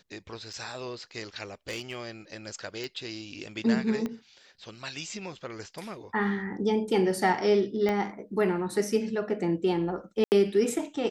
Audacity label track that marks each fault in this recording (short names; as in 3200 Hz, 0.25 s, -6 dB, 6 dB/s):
0.530000	0.530000	gap 4.7 ms
1.690000	1.960000	clipped -29 dBFS
2.840000	2.840000	pop
4.060000	4.060000	pop -20 dBFS
7.890000	7.890000	pop -16 dBFS
10.240000	10.320000	gap 79 ms